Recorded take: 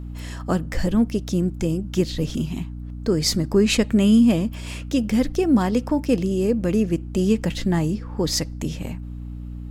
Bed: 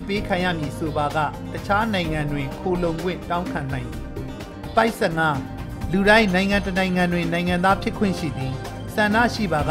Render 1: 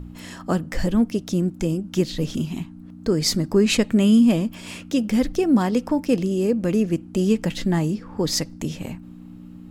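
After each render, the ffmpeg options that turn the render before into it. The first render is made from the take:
-af "bandreject=f=60:t=h:w=4,bandreject=f=120:t=h:w=4"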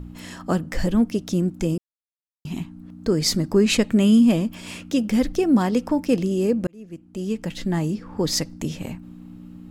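-filter_complex "[0:a]asplit=4[a][b][c][d];[a]atrim=end=1.78,asetpts=PTS-STARTPTS,afade=t=out:st=1.776:d=0.004:c=hsin[e];[b]atrim=start=1.78:end=2.45,asetpts=PTS-STARTPTS,volume=0[f];[c]atrim=start=2.45:end=6.67,asetpts=PTS-STARTPTS,afade=t=in:d=0.004:c=hsin,afade=t=out:st=4.216:d=0.004:c=hsin[g];[d]atrim=start=6.67,asetpts=PTS-STARTPTS,afade=t=in:d=1.41[h];[e][f][g][h]concat=n=4:v=0:a=1"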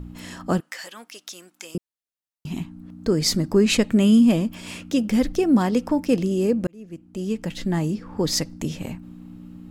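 -filter_complex "[0:a]asettb=1/sr,asplit=3[a][b][c];[a]atrim=end=0.604[d];[b]atrim=start=0.6:end=1.75,asetpts=PTS-STARTPTS,afade=t=in:d=0.004:c=qsin,afade=t=out:st=1.146:d=0.004:c=qsin,highpass=1.3k[e];[c]atrim=start=1.746[f];[d][e]acrossfade=d=0.004:c1=hsin:c2=qsin[g];[g][f]acrossfade=d=0.004:c1=qsin:c2=hsin"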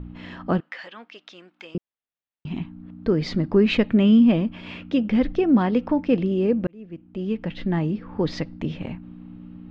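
-af "lowpass=f=3.4k:w=0.5412,lowpass=f=3.4k:w=1.3066"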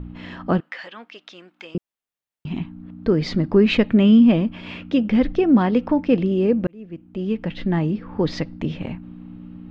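-af "volume=2.5dB"

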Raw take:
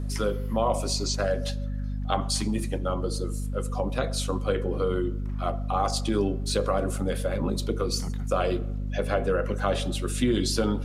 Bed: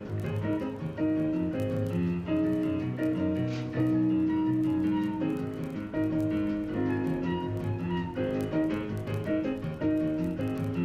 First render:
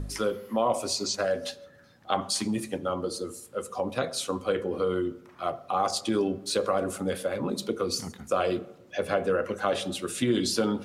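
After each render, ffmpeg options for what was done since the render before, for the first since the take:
-af "bandreject=f=50:t=h:w=4,bandreject=f=100:t=h:w=4,bandreject=f=150:t=h:w=4,bandreject=f=200:t=h:w=4,bandreject=f=250:t=h:w=4"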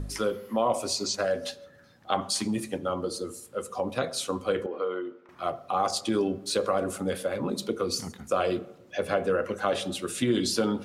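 -filter_complex "[0:a]asettb=1/sr,asplit=3[a][b][c];[a]atrim=end=4.664[d];[b]atrim=start=4.66:end=5.29,asetpts=PTS-STARTPTS,afade=t=in:d=0.004:c=qsin,afade=t=out:st=0.626:d=0.004:c=qsin,highpass=450,lowpass=2.5k[e];[c]atrim=start=5.286[f];[d][e]acrossfade=d=0.004:c1=hsin:c2=qsin[g];[g][f]acrossfade=d=0.004:c1=qsin:c2=hsin"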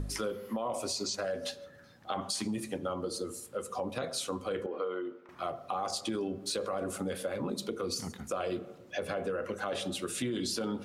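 -af "alimiter=limit=-19.5dB:level=0:latency=1:release=24,acompressor=threshold=-33dB:ratio=2.5"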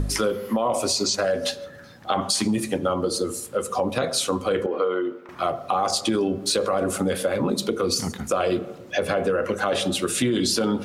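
-af "volume=11.5dB"

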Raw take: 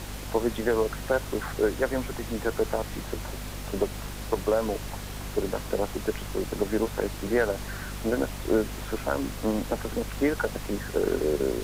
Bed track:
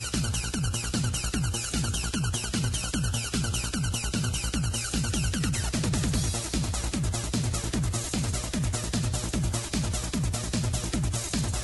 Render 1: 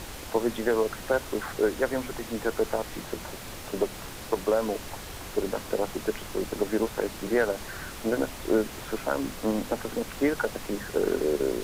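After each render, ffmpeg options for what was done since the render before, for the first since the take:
-af "bandreject=f=50:t=h:w=6,bandreject=f=100:t=h:w=6,bandreject=f=150:t=h:w=6,bandreject=f=200:t=h:w=6,bandreject=f=250:t=h:w=6"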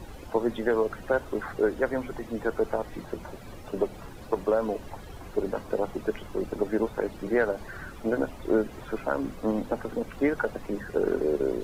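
-af "afftdn=nr=14:nf=-40"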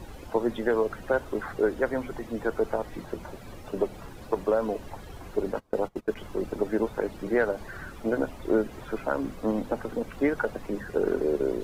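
-filter_complex "[0:a]asplit=3[a][b][c];[a]afade=t=out:st=5.52:d=0.02[d];[b]agate=range=-24dB:threshold=-34dB:ratio=16:release=100:detection=peak,afade=t=in:st=5.52:d=0.02,afade=t=out:st=6.15:d=0.02[e];[c]afade=t=in:st=6.15:d=0.02[f];[d][e][f]amix=inputs=3:normalize=0"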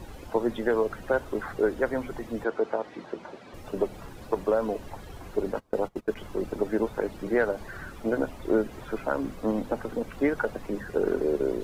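-filter_complex "[0:a]asettb=1/sr,asplit=3[a][b][c];[a]atrim=end=2.444[d];[b]atrim=start=2.44:end=3.54,asetpts=PTS-STARTPTS,afade=t=in:d=0.004:c=qsin,afade=t=out:st=1.096:d=0.004:c=qsin,highpass=230,lowpass=4.9k[e];[c]atrim=start=3.536[f];[d][e]acrossfade=d=0.004:c1=hsin:c2=qsin[g];[g][f]acrossfade=d=0.004:c1=qsin:c2=hsin"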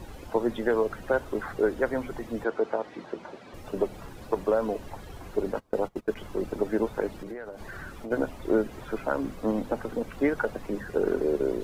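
-filter_complex "[0:a]asplit=3[a][b][c];[a]afade=t=out:st=7.16:d=0.02[d];[b]acompressor=threshold=-34dB:ratio=12:attack=3.2:release=140:knee=1:detection=peak,afade=t=in:st=7.16:d=0.02,afade=t=out:st=8.1:d=0.02[e];[c]afade=t=in:st=8.1:d=0.02[f];[d][e][f]amix=inputs=3:normalize=0"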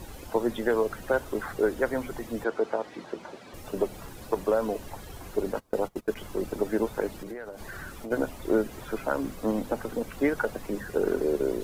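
-af "aemphasis=mode=production:type=cd"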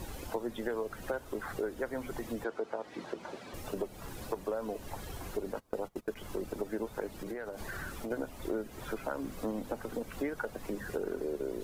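-af "acompressor=threshold=-35dB:ratio=3"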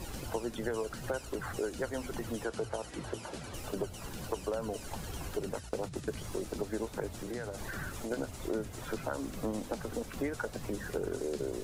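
-filter_complex "[1:a]volume=-18dB[a];[0:a][a]amix=inputs=2:normalize=0"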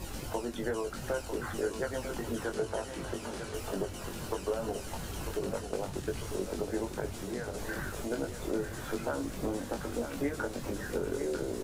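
-filter_complex "[0:a]asplit=2[a][b];[b]adelay=21,volume=-4.5dB[c];[a][c]amix=inputs=2:normalize=0,aecho=1:1:949|1898|2847|3796|4745|5694:0.376|0.195|0.102|0.0528|0.0275|0.0143"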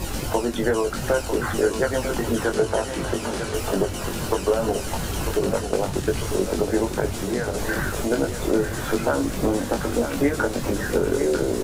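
-af "volume=12dB"

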